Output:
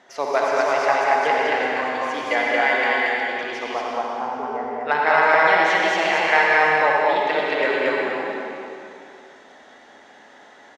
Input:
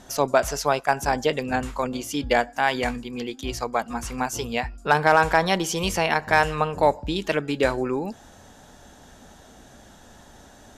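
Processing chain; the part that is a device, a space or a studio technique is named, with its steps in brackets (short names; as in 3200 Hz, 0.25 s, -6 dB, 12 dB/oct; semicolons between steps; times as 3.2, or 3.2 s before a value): 3.62–4.81 LPF 1200 Hz 24 dB/oct; station announcement (BPF 400–3600 Hz; bell 2000 Hz +11 dB 0.21 oct; loudspeakers at several distances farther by 17 m -12 dB, 66 m -9 dB, 78 m -1 dB; reverb RT60 2.6 s, pre-delay 64 ms, DRR -2 dB); gain -2.5 dB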